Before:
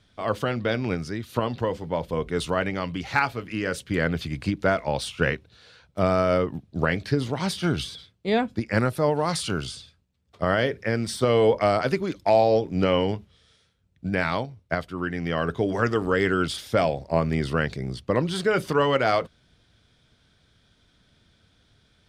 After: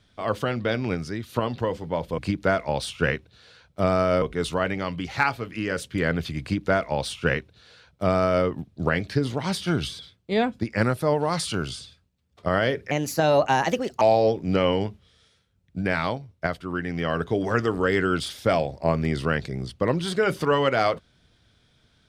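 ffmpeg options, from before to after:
ffmpeg -i in.wav -filter_complex "[0:a]asplit=5[link_01][link_02][link_03][link_04][link_05];[link_01]atrim=end=2.182[link_06];[link_02]atrim=start=4.368:end=6.412[link_07];[link_03]atrim=start=2.178:end=10.874[link_08];[link_04]atrim=start=10.87:end=12.29,asetpts=PTS-STARTPTS,asetrate=56889,aresample=44100,atrim=end_sample=48544,asetpts=PTS-STARTPTS[link_09];[link_05]atrim=start=12.286[link_10];[link_06][link_07]acrossfade=duration=0.004:curve1=hsin:curve2=hsin[link_11];[link_11][link_08]acrossfade=duration=0.004:curve1=hsin:curve2=hsin[link_12];[link_12][link_09]acrossfade=duration=0.004:curve1=hsin:curve2=hsin[link_13];[link_13][link_10]acrossfade=duration=0.004:curve1=hsin:curve2=hsin" out.wav

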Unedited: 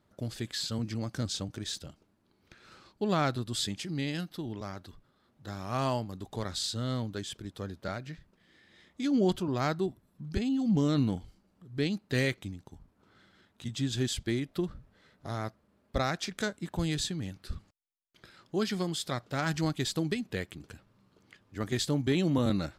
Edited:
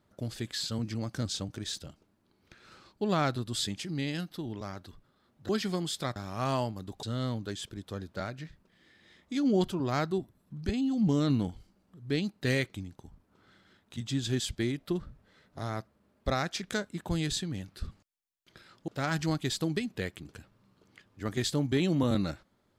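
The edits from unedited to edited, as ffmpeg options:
ffmpeg -i in.wav -filter_complex "[0:a]asplit=5[link_01][link_02][link_03][link_04][link_05];[link_01]atrim=end=5.492[link_06];[link_02]atrim=start=18.558:end=19.232[link_07];[link_03]atrim=start=5.488:end=6.362[link_08];[link_04]atrim=start=6.708:end=18.562[link_09];[link_05]atrim=start=19.228[link_10];[link_06][link_07]acrossfade=duration=0.004:curve1=hsin:curve2=hsin[link_11];[link_11][link_08]acrossfade=duration=0.004:curve1=hsin:curve2=hsin[link_12];[link_12][link_09]acrossfade=duration=0.004:curve1=hsin:curve2=hsin[link_13];[link_13][link_10]acrossfade=duration=0.004:curve1=hsin:curve2=hsin" out.wav

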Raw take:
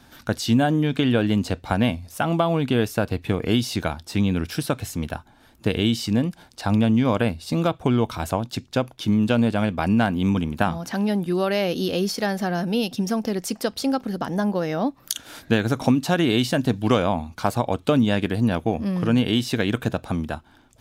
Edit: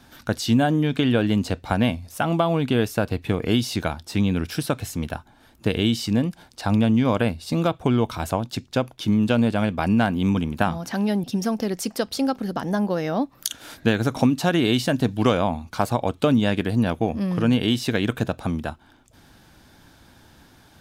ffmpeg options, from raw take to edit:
ffmpeg -i in.wav -filter_complex "[0:a]asplit=2[link_01][link_02];[link_01]atrim=end=11.242[link_03];[link_02]atrim=start=12.888[link_04];[link_03][link_04]acrossfade=duration=0.004:curve1=hsin:curve2=hsin" out.wav

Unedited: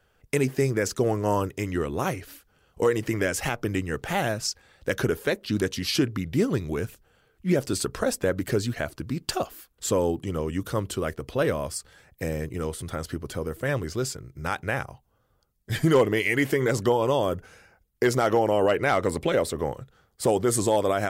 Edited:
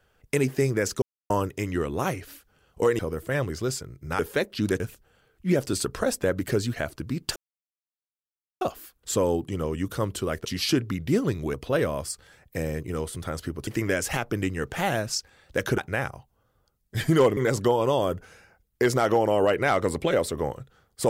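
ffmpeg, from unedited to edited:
ffmpeg -i in.wav -filter_complex "[0:a]asplit=12[link_01][link_02][link_03][link_04][link_05][link_06][link_07][link_08][link_09][link_10][link_11][link_12];[link_01]atrim=end=1.02,asetpts=PTS-STARTPTS,afade=type=out:start_time=1.016:duration=0.004:curve=hsin[link_13];[link_02]atrim=start=1.02:end=1.3,asetpts=PTS-STARTPTS,volume=0[link_14];[link_03]atrim=start=1.3:end=2.992,asetpts=PTS-STARTPTS,afade=type=in:duration=0.004:curve=hsin[link_15];[link_04]atrim=start=13.328:end=14.532[link_16];[link_05]atrim=start=5.098:end=5.712[link_17];[link_06]atrim=start=6.798:end=9.36,asetpts=PTS-STARTPTS,afade=type=out:start_time=2.558:duration=0.004:curve=hsin,apad=pad_dur=1.25[link_18];[link_07]atrim=start=9.36:end=11.202,asetpts=PTS-STARTPTS,afade=type=in:duration=0.004:curve=hsin[link_19];[link_08]atrim=start=5.708:end=6.802[link_20];[link_09]atrim=start=11.198:end=13.332[link_21];[link_10]atrim=start=2.988:end=5.102[link_22];[link_11]atrim=start=14.528:end=16.122[link_23];[link_12]atrim=start=16.578[link_24];[link_13][link_14][link_15]concat=n=3:v=0:a=1[link_25];[link_25][link_16]acrossfade=duration=0.004:curve1=hsin:curve2=hsin[link_26];[link_26][link_17]acrossfade=duration=0.004:curve1=hsin:curve2=hsin[link_27];[link_18][link_19]concat=n=2:v=0:a=1[link_28];[link_27][link_28]acrossfade=duration=0.004:curve1=hsin:curve2=hsin[link_29];[link_29][link_20]acrossfade=duration=0.004:curve1=hsin:curve2=hsin[link_30];[link_30][link_21]acrossfade=duration=0.004:curve1=hsin:curve2=hsin[link_31];[link_31][link_22]acrossfade=duration=0.004:curve1=hsin:curve2=hsin[link_32];[link_32][link_23]acrossfade=duration=0.004:curve1=hsin:curve2=hsin[link_33];[link_33][link_24]acrossfade=duration=0.004:curve1=hsin:curve2=hsin" out.wav

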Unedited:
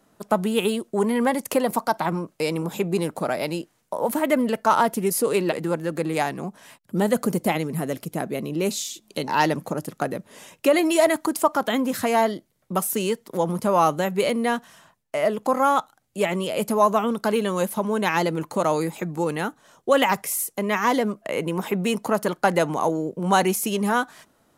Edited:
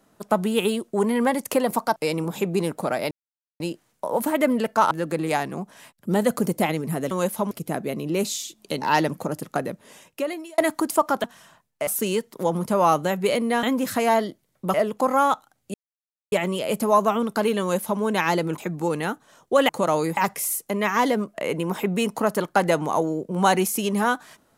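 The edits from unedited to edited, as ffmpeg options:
ffmpeg -i in.wav -filter_complex "[0:a]asplit=15[link_01][link_02][link_03][link_04][link_05][link_06][link_07][link_08][link_09][link_10][link_11][link_12][link_13][link_14][link_15];[link_01]atrim=end=1.962[link_16];[link_02]atrim=start=2.338:end=3.49,asetpts=PTS-STARTPTS,afade=type=out:start_time=1.148:duration=0.004:curve=hsin,apad=pad_dur=0.49[link_17];[link_03]atrim=start=3.49:end=4.802,asetpts=PTS-STARTPTS,afade=type=in:duration=0.004:curve=hsin[link_18];[link_04]atrim=start=5.768:end=7.972[link_19];[link_05]atrim=start=17.488:end=17.892[link_20];[link_06]atrim=start=7.968:end=11.04,asetpts=PTS-STARTPTS,afade=type=out:start_time=2.142:duration=0.93[link_21];[link_07]atrim=start=11.04:end=11.702,asetpts=PTS-STARTPTS,afade=type=in:duration=0.004:curve=hsin[link_22];[link_08]atrim=start=14.568:end=15.202[link_23];[link_09]atrim=start=12.808:end=14.572[link_24];[link_10]atrim=start=11.698:end=12.812[link_25];[link_11]atrim=start=15.198:end=16.2,asetpts=PTS-STARTPTS,afade=type=out:start_time=0.998:duration=0.004:curve=hsin,apad=pad_dur=0.58[link_26];[link_12]atrim=start=16.2:end=18.462,asetpts=PTS-STARTPTS,afade=type=in:duration=0.004:curve=hsin[link_27];[link_13]atrim=start=18.938:end=20.052[link_28];[link_14]atrim=start=18.458:end=18.942[link_29];[link_15]atrim=start=20.048[link_30];[link_17][link_18]concat=n=2:v=0:a=1[link_31];[link_16][link_31]acrossfade=duration=0.004:curve1=hsin:curve2=hsin[link_32];[link_32][link_19]acrossfade=duration=0.004:curve1=hsin:curve2=hsin[link_33];[link_33][link_20]acrossfade=duration=0.004:curve1=hsin:curve2=hsin[link_34];[link_21][link_22]concat=n=2:v=0:a=1[link_35];[link_34][link_35]acrossfade=duration=0.004:curve1=hsin:curve2=hsin[link_36];[link_36][link_23]acrossfade=duration=0.004:curve1=hsin:curve2=hsin[link_37];[link_37][link_24]acrossfade=duration=0.004:curve1=hsin:curve2=hsin[link_38];[link_38][link_25]acrossfade=duration=0.004:curve1=hsin:curve2=hsin[link_39];[link_26][link_27]concat=n=2:v=0:a=1[link_40];[link_39][link_40]acrossfade=duration=0.004:curve1=hsin:curve2=hsin[link_41];[link_41][link_28]acrossfade=duration=0.004:curve1=hsin:curve2=hsin[link_42];[link_42][link_29]acrossfade=duration=0.004:curve1=hsin:curve2=hsin[link_43];[link_43][link_30]acrossfade=duration=0.004:curve1=hsin:curve2=hsin" out.wav

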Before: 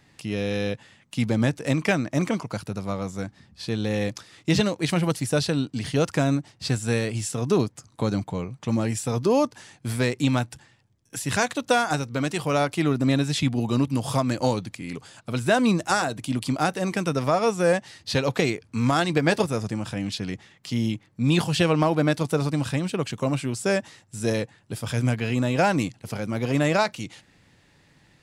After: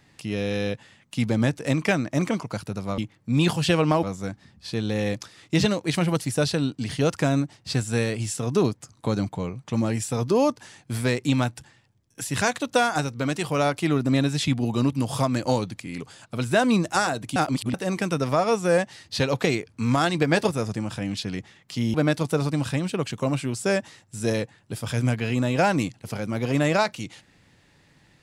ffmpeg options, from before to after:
ffmpeg -i in.wav -filter_complex "[0:a]asplit=6[link_01][link_02][link_03][link_04][link_05][link_06];[link_01]atrim=end=2.982[link_07];[link_02]atrim=start=20.888:end=21.942[link_08];[link_03]atrim=start=2.978:end=16.312[link_09];[link_04]atrim=start=16.308:end=16.692,asetpts=PTS-STARTPTS,areverse[link_10];[link_05]atrim=start=16.688:end=20.892[link_11];[link_06]atrim=start=21.938[link_12];[link_07][link_08]acrossfade=duration=0.004:curve1=hsin:curve2=hsin[link_13];[link_13][link_09]acrossfade=duration=0.004:curve1=hsin:curve2=hsin[link_14];[link_14][link_10]acrossfade=duration=0.004:curve1=hsin:curve2=hsin[link_15];[link_15][link_11]acrossfade=duration=0.004:curve1=hsin:curve2=hsin[link_16];[link_16][link_12]acrossfade=duration=0.004:curve1=hsin:curve2=hsin" out.wav

